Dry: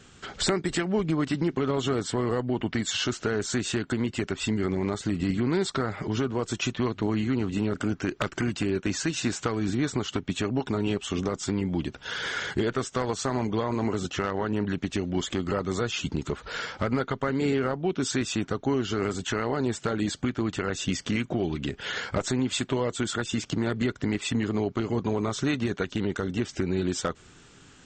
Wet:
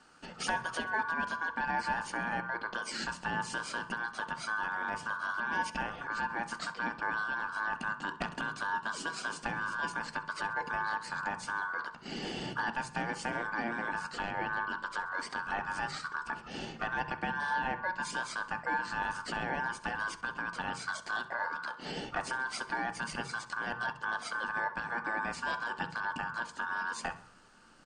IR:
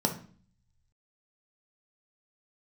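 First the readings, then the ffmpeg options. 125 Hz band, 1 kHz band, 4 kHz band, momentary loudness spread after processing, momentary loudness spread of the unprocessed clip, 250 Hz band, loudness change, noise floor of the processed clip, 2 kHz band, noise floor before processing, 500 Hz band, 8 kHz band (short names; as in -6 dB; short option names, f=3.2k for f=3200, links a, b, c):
-18.5 dB, +2.0 dB, -9.5 dB, 4 LU, 3 LU, -17.5 dB, -7.0 dB, -51 dBFS, +3.0 dB, -53 dBFS, -15.5 dB, -11.0 dB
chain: -filter_complex "[0:a]aeval=exprs='val(0)*sin(2*PI*1300*n/s)':c=same,aecho=1:1:66|132|198|264:0.112|0.0595|0.0315|0.0167,asplit=2[a][b];[1:a]atrim=start_sample=2205,lowpass=3.1k[c];[b][c]afir=irnorm=-1:irlink=0,volume=-10dB[d];[a][d]amix=inputs=2:normalize=0,volume=-7.5dB"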